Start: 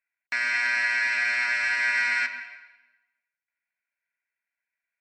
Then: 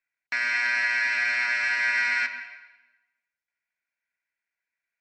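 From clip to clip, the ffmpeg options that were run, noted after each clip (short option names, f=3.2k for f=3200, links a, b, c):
-af "lowpass=f=7.3k:w=0.5412,lowpass=f=7.3k:w=1.3066"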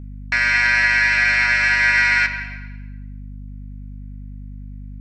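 -af "aeval=exprs='val(0)+0.00891*(sin(2*PI*50*n/s)+sin(2*PI*2*50*n/s)/2+sin(2*PI*3*50*n/s)/3+sin(2*PI*4*50*n/s)/4+sin(2*PI*5*50*n/s)/5)':c=same,volume=8.5dB"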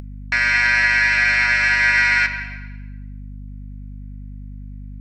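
-af "acompressor=mode=upward:threshold=-34dB:ratio=2.5"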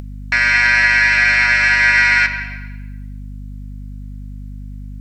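-af "acrusher=bits=10:mix=0:aa=0.000001,volume=3.5dB"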